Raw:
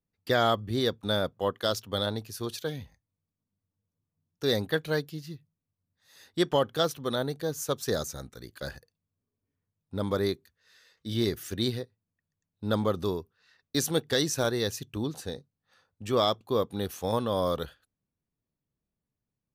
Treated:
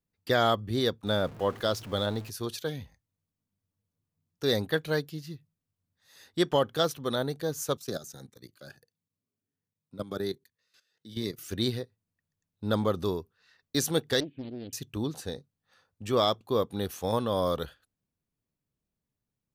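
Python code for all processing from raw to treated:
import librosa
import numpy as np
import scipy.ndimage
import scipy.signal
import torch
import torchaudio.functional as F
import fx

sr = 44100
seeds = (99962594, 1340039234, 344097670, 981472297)

y = fx.chain(x, sr, fx.zero_step(step_db=-40.0),
    fx.high_shelf(hz=3500.0, db=-6.0), at=(1.07, 2.3))
y = fx.chain(y, sr, fx.highpass(hz=110.0, slope=24),
    fx.level_steps(step_db=15),
    fx.notch_cascade(direction='rising', hz=1.4), at=(7.77, 11.49))
y = fx.chain(y, sr, fx.formant_cascade(vowel='i'),
    fx.doppler_dist(depth_ms=0.47), at=(14.2, 14.73))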